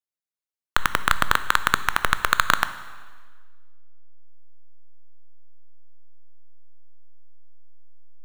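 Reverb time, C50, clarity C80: 1.5 s, 13.5 dB, 15.0 dB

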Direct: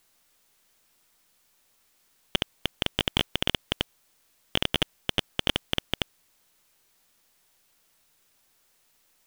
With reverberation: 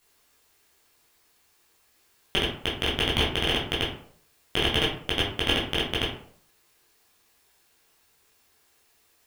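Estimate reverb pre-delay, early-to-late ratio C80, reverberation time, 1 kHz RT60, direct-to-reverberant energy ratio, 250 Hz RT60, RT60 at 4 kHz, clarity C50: 11 ms, 9.0 dB, 0.60 s, 0.55 s, -7.0 dB, 0.55 s, 0.30 s, 5.0 dB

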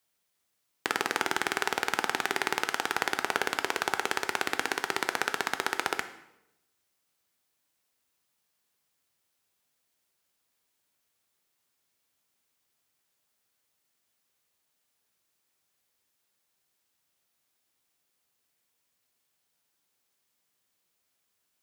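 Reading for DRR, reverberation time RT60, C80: 9.0 dB, 0.85 s, 14.5 dB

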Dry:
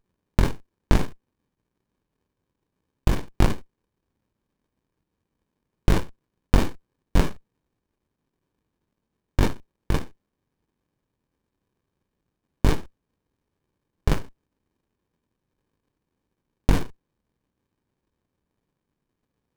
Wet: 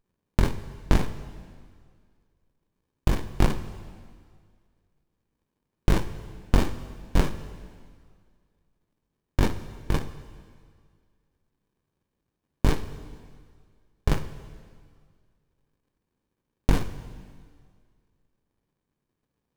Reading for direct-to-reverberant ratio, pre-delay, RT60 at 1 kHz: 11.5 dB, 8 ms, 1.9 s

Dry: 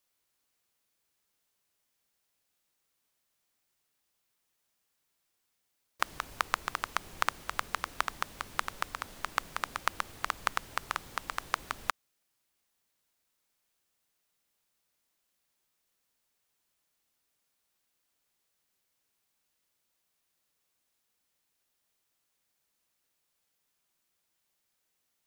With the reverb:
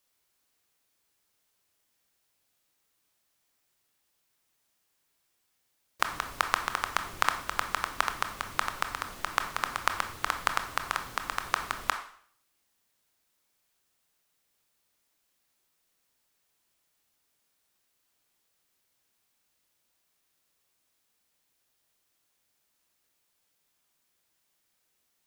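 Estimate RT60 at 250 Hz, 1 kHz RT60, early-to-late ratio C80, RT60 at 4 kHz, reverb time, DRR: 0.55 s, 0.55 s, 13.0 dB, 0.55 s, 0.55 s, 6.5 dB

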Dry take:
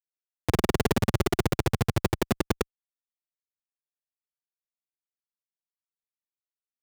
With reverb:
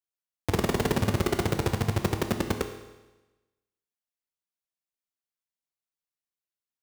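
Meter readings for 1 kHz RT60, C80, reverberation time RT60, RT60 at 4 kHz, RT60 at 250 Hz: 1.1 s, 10.5 dB, 1.1 s, 1.1 s, 1.1 s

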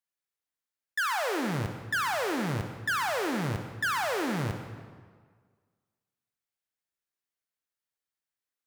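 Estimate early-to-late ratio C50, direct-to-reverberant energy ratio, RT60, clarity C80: 6.5 dB, 6.0 dB, 1.7 s, 7.5 dB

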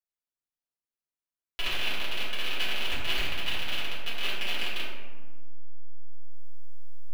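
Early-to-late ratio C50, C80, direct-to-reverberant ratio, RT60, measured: 0.0 dB, 2.0 dB, -10.0 dB, 1.4 s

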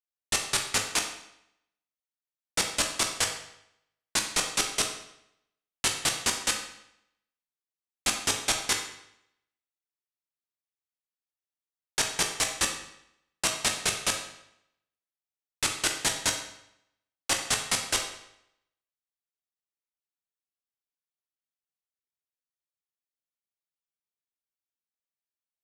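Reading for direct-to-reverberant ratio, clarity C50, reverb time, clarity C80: 2.0 dB, 6.5 dB, 0.75 s, 9.0 dB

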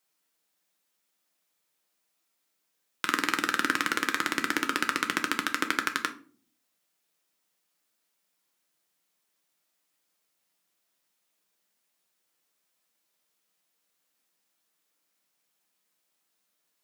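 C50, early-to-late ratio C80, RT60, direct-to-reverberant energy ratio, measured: 14.5 dB, 19.5 dB, 0.45 s, 5.5 dB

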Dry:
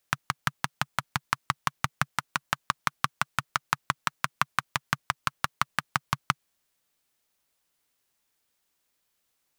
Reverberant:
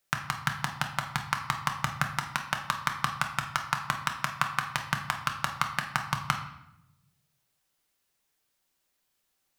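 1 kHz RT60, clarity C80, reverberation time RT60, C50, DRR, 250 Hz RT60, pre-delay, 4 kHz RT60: 0.80 s, 11.0 dB, 0.80 s, 8.0 dB, 3.5 dB, 1.2 s, 5 ms, 0.65 s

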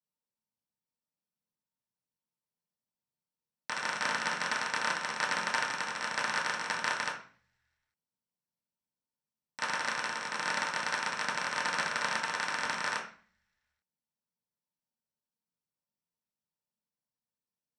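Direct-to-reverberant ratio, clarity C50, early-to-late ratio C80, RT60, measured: -6.0 dB, 7.0 dB, 11.5 dB, 0.40 s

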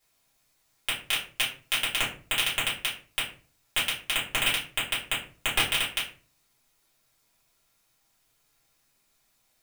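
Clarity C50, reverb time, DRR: 7.5 dB, 0.40 s, -8.5 dB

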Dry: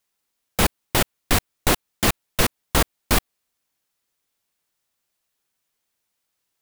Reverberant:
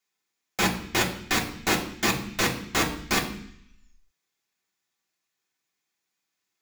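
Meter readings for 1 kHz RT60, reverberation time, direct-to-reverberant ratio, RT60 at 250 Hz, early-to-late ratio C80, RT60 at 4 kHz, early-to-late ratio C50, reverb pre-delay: 0.65 s, 0.65 s, -1.0 dB, 0.90 s, 13.5 dB, 0.85 s, 10.0 dB, 3 ms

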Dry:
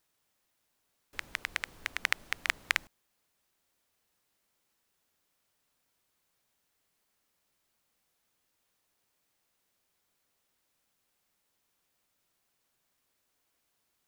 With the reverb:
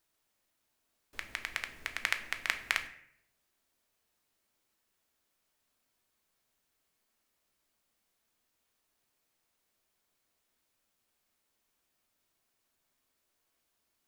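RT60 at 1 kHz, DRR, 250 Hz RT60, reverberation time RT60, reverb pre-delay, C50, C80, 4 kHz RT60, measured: 0.60 s, 6.0 dB, 0.80 s, 0.70 s, 3 ms, 12.0 dB, 15.5 dB, 0.50 s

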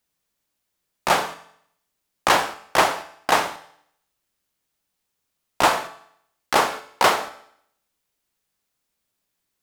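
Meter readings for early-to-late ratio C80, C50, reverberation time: 17.0 dB, 14.0 dB, 0.65 s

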